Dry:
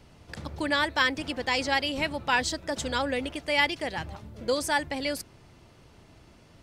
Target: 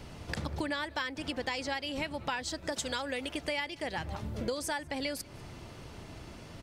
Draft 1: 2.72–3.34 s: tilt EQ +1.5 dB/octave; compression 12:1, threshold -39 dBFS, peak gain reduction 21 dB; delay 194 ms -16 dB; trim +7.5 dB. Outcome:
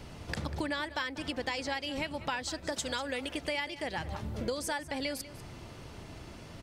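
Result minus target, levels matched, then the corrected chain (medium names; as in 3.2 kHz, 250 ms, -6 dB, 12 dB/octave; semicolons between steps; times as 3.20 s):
echo-to-direct +10 dB
2.72–3.34 s: tilt EQ +1.5 dB/octave; compression 12:1, threshold -39 dBFS, peak gain reduction 21 dB; delay 194 ms -26 dB; trim +7.5 dB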